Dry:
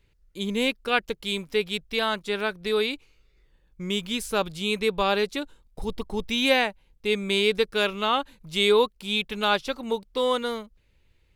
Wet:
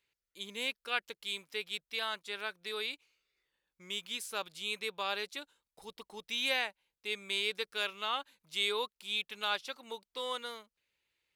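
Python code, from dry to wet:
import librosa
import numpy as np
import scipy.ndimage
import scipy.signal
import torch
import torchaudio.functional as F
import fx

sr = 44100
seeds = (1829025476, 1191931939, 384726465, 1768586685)

y = fx.highpass(x, sr, hz=1400.0, slope=6)
y = y * 10.0 ** (-7.0 / 20.0)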